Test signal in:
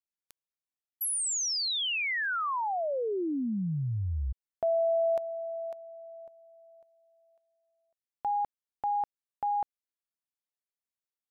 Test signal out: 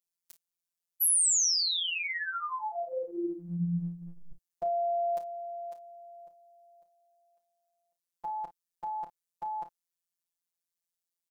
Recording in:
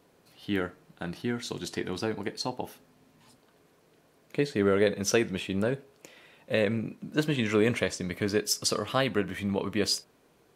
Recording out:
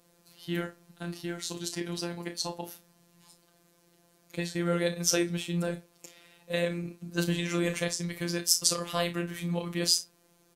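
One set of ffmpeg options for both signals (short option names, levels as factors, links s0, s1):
-af "bass=f=250:g=3,treble=f=4000:g=10,aecho=1:1:32|52:0.316|0.168,afftfilt=real='hypot(re,im)*cos(PI*b)':imag='0':win_size=1024:overlap=0.75,volume=0.891"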